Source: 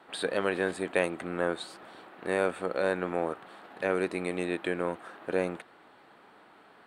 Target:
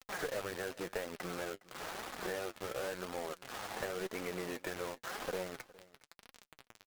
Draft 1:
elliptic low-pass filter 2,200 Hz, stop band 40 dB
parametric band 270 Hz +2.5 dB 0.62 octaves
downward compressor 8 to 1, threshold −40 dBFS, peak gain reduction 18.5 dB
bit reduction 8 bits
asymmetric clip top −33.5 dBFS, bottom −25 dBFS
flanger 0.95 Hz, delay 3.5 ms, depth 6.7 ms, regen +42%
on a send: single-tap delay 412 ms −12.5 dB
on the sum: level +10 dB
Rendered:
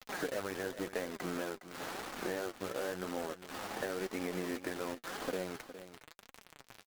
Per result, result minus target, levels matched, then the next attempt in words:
asymmetric clip: distortion −9 dB; echo-to-direct +8.5 dB; 250 Hz band +4.0 dB
elliptic low-pass filter 2,200 Hz, stop band 40 dB
parametric band 270 Hz +2.5 dB 0.62 octaves
downward compressor 8 to 1, threshold −40 dBFS, peak gain reduction 18.5 dB
bit reduction 8 bits
asymmetric clip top −40.5 dBFS, bottom −25 dBFS
flanger 0.95 Hz, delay 3.5 ms, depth 6.7 ms, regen +42%
on a send: single-tap delay 412 ms −12.5 dB
on the sum: level +10 dB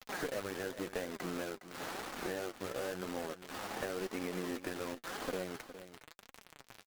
echo-to-direct +8.5 dB; 250 Hz band +4.0 dB
elliptic low-pass filter 2,200 Hz, stop band 40 dB
parametric band 270 Hz +2.5 dB 0.62 octaves
downward compressor 8 to 1, threshold −40 dBFS, peak gain reduction 18.5 dB
bit reduction 8 bits
asymmetric clip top −40.5 dBFS, bottom −25 dBFS
flanger 0.95 Hz, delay 3.5 ms, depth 6.7 ms, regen +42%
on a send: single-tap delay 412 ms −21 dB
on the sum: level +10 dB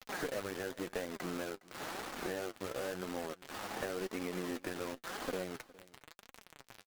250 Hz band +4.0 dB
elliptic low-pass filter 2,200 Hz, stop band 40 dB
parametric band 270 Hz −7.5 dB 0.62 octaves
downward compressor 8 to 1, threshold −40 dBFS, peak gain reduction 17.5 dB
bit reduction 8 bits
asymmetric clip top −40.5 dBFS, bottom −25 dBFS
flanger 0.95 Hz, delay 3.5 ms, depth 6.7 ms, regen +42%
on a send: single-tap delay 412 ms −21 dB
on the sum: level +10 dB

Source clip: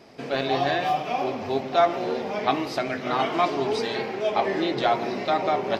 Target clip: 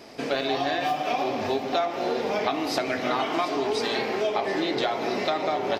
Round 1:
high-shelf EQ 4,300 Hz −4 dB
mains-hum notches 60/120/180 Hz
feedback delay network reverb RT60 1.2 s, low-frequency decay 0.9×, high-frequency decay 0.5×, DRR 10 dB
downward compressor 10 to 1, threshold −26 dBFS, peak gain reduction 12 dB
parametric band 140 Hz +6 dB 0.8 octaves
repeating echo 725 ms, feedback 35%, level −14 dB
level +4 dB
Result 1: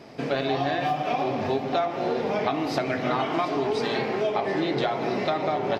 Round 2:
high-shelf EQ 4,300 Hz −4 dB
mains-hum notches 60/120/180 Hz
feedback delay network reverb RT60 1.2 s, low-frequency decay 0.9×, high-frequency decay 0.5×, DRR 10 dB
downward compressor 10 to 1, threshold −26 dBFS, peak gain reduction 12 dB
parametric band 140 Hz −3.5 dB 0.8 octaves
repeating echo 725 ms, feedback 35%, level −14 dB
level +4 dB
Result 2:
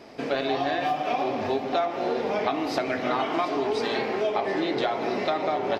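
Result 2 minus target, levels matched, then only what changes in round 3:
8,000 Hz band −6.5 dB
change: high-shelf EQ 4,300 Hz +6 dB

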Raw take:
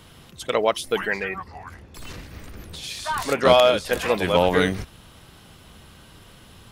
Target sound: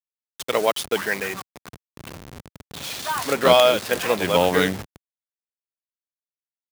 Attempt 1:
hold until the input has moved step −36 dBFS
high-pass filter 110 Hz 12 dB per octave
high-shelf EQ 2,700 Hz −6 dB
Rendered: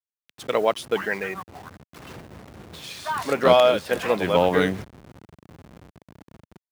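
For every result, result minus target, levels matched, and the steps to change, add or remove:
hold until the input has moved: distortion −7 dB; 4,000 Hz band −4.5 dB
change: hold until the input has moved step −29 dBFS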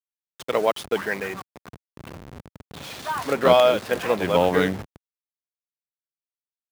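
4,000 Hz band −5.0 dB
change: high-shelf EQ 2,700 Hz +4 dB

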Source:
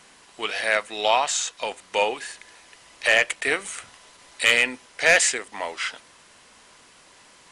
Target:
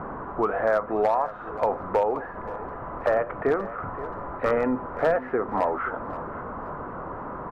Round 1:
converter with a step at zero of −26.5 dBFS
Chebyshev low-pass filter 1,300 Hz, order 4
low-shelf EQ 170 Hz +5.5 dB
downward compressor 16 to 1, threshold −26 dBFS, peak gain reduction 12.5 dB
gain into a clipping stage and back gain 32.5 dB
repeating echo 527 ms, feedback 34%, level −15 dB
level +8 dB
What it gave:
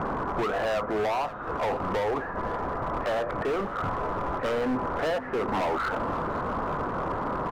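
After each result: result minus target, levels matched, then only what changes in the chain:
gain into a clipping stage and back: distortion +17 dB; converter with a step at zero: distortion +6 dB
change: gain into a clipping stage and back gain 22 dB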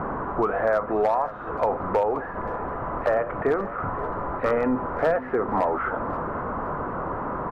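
converter with a step at zero: distortion +6 dB
change: converter with a step at zero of −33 dBFS

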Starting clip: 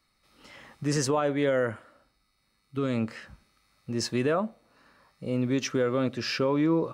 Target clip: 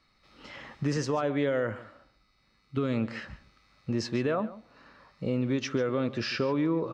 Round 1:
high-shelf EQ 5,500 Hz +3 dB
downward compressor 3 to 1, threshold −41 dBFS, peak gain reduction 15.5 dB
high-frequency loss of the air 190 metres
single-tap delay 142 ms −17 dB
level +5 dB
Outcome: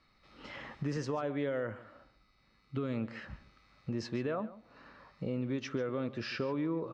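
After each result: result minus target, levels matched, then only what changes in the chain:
downward compressor: peak gain reduction +6.5 dB; 8,000 Hz band −3.5 dB
change: downward compressor 3 to 1, threshold −31 dBFS, peak gain reduction 8.5 dB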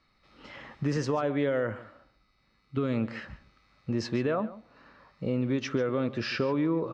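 8,000 Hz band −3.5 dB
change: high-shelf EQ 5,500 Hz +12 dB

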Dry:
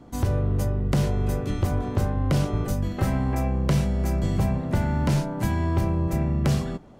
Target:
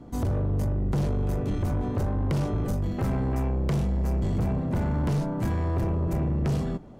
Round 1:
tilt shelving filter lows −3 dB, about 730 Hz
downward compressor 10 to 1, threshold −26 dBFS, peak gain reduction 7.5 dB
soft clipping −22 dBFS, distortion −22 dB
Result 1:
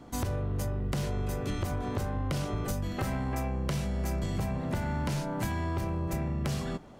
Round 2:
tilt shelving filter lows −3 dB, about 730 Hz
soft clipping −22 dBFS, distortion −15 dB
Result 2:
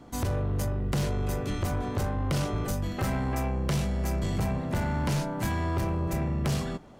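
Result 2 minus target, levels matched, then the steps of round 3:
1,000 Hz band +4.5 dB
tilt shelving filter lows +3.5 dB, about 730 Hz
soft clipping −22 dBFS, distortion −10 dB

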